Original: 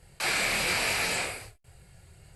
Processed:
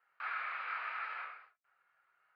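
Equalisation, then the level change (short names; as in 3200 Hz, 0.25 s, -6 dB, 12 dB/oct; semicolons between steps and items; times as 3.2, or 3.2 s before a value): ladder band-pass 1400 Hz, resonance 70%; air absorption 390 m; +2.0 dB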